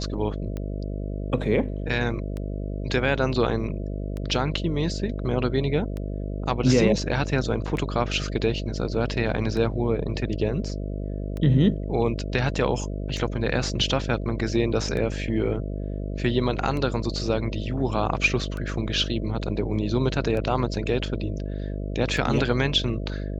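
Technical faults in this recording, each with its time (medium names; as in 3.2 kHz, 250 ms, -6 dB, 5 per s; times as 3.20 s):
buzz 50 Hz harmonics 13 -30 dBFS
tick 33 1/3 rpm -20 dBFS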